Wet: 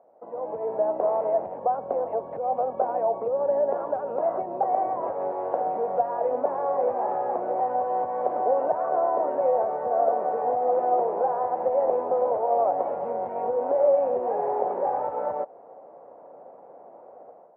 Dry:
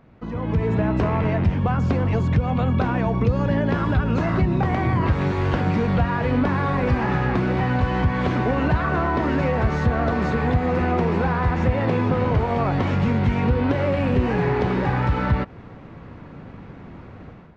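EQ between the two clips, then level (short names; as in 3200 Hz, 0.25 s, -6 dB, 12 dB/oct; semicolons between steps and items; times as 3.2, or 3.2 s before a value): Butterworth band-pass 640 Hz, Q 2.1; +5.5 dB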